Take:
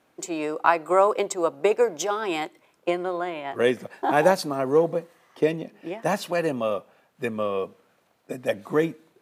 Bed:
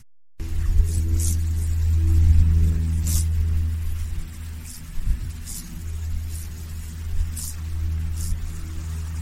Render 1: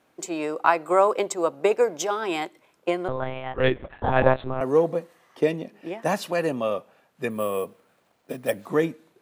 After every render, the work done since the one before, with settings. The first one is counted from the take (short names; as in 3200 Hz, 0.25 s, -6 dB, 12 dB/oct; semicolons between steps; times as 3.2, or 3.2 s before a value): 3.08–4.61 monotone LPC vocoder at 8 kHz 130 Hz; 7.3–8.66 careless resampling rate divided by 4×, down none, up hold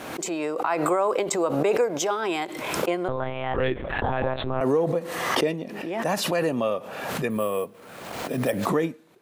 limiter -14 dBFS, peak gain reduction 10.5 dB; backwards sustainer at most 38 dB/s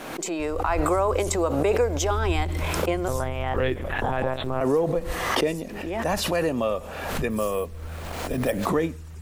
add bed -11 dB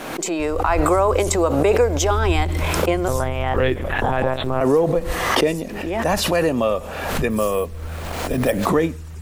gain +5.5 dB